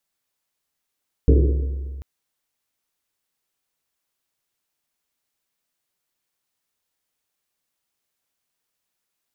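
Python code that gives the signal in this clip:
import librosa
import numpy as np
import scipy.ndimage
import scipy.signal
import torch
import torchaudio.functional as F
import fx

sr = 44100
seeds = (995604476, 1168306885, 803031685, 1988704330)

y = fx.risset_drum(sr, seeds[0], length_s=0.74, hz=68.0, decay_s=2.18, noise_hz=360.0, noise_width_hz=240.0, noise_pct=25)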